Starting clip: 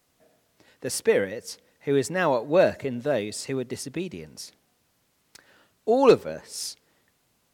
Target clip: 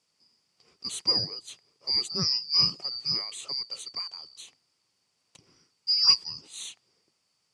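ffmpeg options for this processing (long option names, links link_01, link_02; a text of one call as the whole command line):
ffmpeg -i in.wav -af "afftfilt=real='real(if(lt(b,272),68*(eq(floor(b/68),0)*1+eq(floor(b/68),1)*2+eq(floor(b/68),2)*3+eq(floor(b/68),3)*0)+mod(b,68),b),0)':imag='imag(if(lt(b,272),68*(eq(floor(b/68),0)*1+eq(floor(b/68),1)*2+eq(floor(b/68),2)*3+eq(floor(b/68),3)*0)+mod(b,68),b),0)':win_size=2048:overlap=0.75,highpass=100,equalizer=frequency=110:width_type=q:width=4:gain=5,equalizer=frequency=160:width_type=q:width=4:gain=5,equalizer=frequency=630:width_type=q:width=4:gain=-4,equalizer=frequency=1600:width_type=q:width=4:gain=-6,equalizer=frequency=3600:width_type=q:width=4:gain=-3,lowpass=frequency=9100:width=0.5412,lowpass=frequency=9100:width=1.3066,volume=-4dB" out.wav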